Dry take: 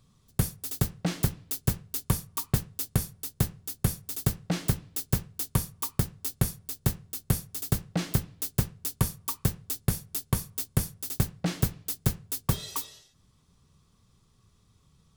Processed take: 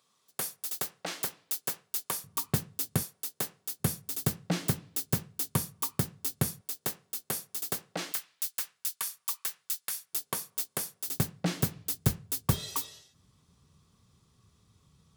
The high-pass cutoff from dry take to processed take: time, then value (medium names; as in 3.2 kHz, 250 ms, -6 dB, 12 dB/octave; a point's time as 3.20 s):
560 Hz
from 2.24 s 140 Hz
from 3.03 s 420 Hz
from 3.80 s 140 Hz
from 6.61 s 400 Hz
from 8.12 s 1.4 kHz
from 10.13 s 440 Hz
from 11.08 s 140 Hz
from 11.75 s 60 Hz